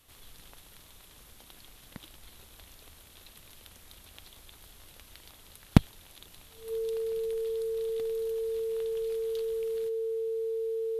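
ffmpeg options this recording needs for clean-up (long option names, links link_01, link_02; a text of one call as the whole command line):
ffmpeg -i in.wav -af "bandreject=frequency=450:width=30" out.wav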